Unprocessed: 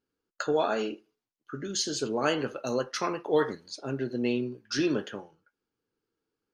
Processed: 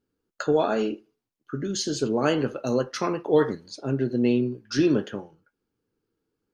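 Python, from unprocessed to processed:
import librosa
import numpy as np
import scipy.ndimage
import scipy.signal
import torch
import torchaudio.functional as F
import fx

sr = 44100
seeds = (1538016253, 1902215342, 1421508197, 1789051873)

y = fx.low_shelf(x, sr, hz=460.0, db=9.5)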